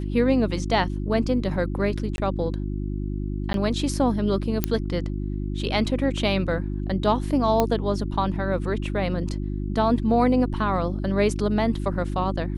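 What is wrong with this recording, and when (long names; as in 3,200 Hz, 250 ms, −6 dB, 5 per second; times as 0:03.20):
mains hum 50 Hz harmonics 7 −28 dBFS
0:02.16–0:02.18: drop-out 21 ms
0:03.53–0:03.54: drop-out 12 ms
0:04.64: click −6 dBFS
0:07.60: click −7 dBFS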